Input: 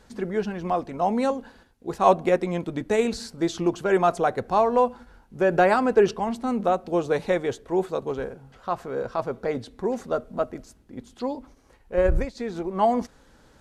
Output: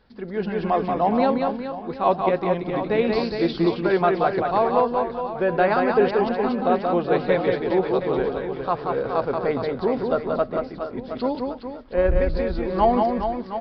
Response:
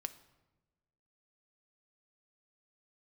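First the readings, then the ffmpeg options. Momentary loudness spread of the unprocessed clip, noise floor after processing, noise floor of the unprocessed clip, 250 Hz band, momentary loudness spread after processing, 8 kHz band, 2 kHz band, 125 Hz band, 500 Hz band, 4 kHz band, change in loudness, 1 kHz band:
12 LU, -37 dBFS, -57 dBFS, +3.0 dB, 8 LU, under -20 dB, +2.0 dB, +3.0 dB, +2.5 dB, +3.0 dB, +2.0 dB, +2.5 dB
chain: -af "aresample=11025,aresample=44100,aecho=1:1:180|414|718.2|1114|1628:0.631|0.398|0.251|0.158|0.1,dynaudnorm=f=180:g=5:m=10dB,volume=-5.5dB"

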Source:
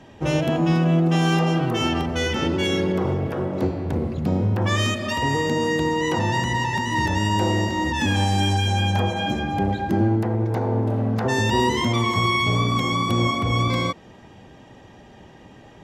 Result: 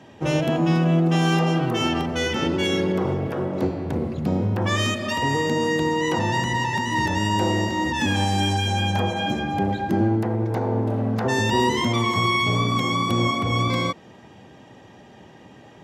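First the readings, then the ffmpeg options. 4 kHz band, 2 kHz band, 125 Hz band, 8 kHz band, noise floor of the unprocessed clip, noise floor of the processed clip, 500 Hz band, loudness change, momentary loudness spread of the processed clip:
0.0 dB, 0.0 dB, -2.0 dB, 0.0 dB, -47 dBFS, -47 dBFS, 0.0 dB, -0.5 dB, 5 LU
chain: -af "highpass=98"

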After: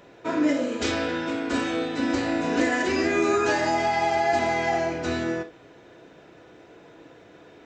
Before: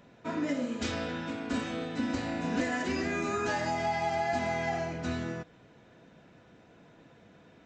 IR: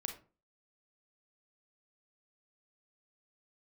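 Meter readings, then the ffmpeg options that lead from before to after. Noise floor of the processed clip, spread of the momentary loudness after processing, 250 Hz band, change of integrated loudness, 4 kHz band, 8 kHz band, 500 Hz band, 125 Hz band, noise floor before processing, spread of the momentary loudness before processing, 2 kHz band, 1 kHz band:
-51 dBFS, 6 LU, +7.5 dB, +8.0 dB, +7.5 dB, +7.5 dB, +9.0 dB, +1.0 dB, -58 dBFS, 6 LU, +8.0 dB, +7.5 dB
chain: -filter_complex "[0:a]asplit=2[a][b];[b]lowshelf=f=230:t=q:w=3:g=-11[c];[1:a]atrim=start_sample=2205,atrim=end_sample=3528[d];[c][d]afir=irnorm=-1:irlink=0,volume=4.5dB[e];[a][e]amix=inputs=2:normalize=0"

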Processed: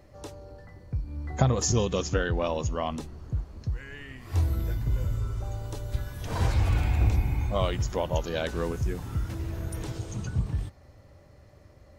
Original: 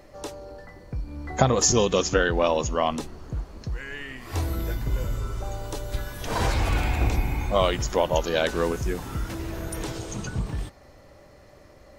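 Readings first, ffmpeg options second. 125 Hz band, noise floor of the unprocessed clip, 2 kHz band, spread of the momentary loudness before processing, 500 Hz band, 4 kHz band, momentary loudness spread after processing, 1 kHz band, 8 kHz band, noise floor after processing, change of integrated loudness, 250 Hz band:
+2.0 dB, -51 dBFS, -7.5 dB, 14 LU, -6.5 dB, -7.5 dB, 12 LU, -7.0 dB, -7.5 dB, -54 dBFS, -3.0 dB, -4.0 dB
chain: -af "equalizer=f=92:t=o:w=1.8:g=11.5,volume=-7.5dB"

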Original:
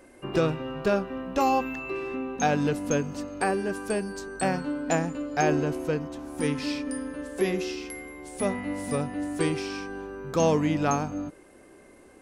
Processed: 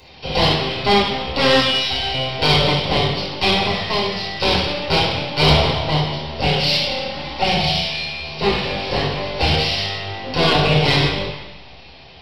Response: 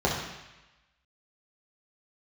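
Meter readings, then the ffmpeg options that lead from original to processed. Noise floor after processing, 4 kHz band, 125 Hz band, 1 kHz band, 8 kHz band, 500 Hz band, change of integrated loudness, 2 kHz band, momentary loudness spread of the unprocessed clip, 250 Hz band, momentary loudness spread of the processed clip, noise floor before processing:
-41 dBFS, +25.0 dB, +12.0 dB, +9.0 dB, 0.0 dB, +6.5 dB, +10.5 dB, +12.5 dB, 11 LU, +3.5 dB, 9 LU, -53 dBFS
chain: -filter_complex "[0:a]aresample=11025,aeval=exprs='abs(val(0))':c=same,aresample=44100[a];[1:a]atrim=start_sample=2205[b];[a][b]afir=irnorm=-1:irlink=0,aexciter=amount=5.7:drive=8.5:freq=2.3k,volume=-5.5dB"

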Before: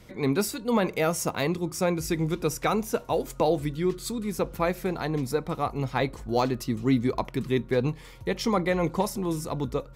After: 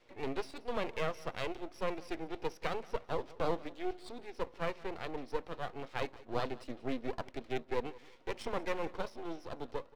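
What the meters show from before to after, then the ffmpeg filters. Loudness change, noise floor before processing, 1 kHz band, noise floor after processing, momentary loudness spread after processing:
-12.5 dB, -46 dBFS, -10.0 dB, -57 dBFS, 6 LU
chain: -filter_complex "[0:a]acrossover=split=410 3200:gain=0.126 1 0.0794[a][b][c];[a][b][c]amix=inputs=3:normalize=0,afftfilt=real='re*between(b*sr/4096,220,5900)':imag='im*between(b*sr/4096,220,5900)':win_size=4096:overlap=0.75,equalizer=f=1.2k:w=0.65:g=-14.5,aeval=exprs='max(val(0),0)':c=same,asplit=2[d][e];[e]aecho=0:1:179|358|537:0.0944|0.0312|0.0103[f];[d][f]amix=inputs=2:normalize=0,volume=4dB"

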